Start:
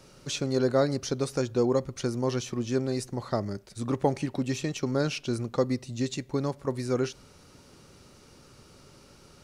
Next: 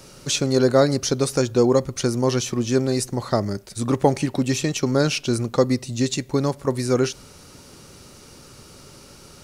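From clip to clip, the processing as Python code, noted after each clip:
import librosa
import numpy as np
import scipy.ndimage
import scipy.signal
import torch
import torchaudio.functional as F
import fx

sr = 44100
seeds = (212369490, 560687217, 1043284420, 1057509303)

y = fx.high_shelf(x, sr, hz=6400.0, db=8.0)
y = y * 10.0 ** (7.5 / 20.0)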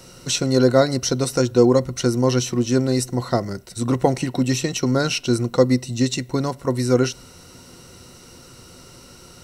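y = fx.ripple_eq(x, sr, per_octave=2.0, db=8)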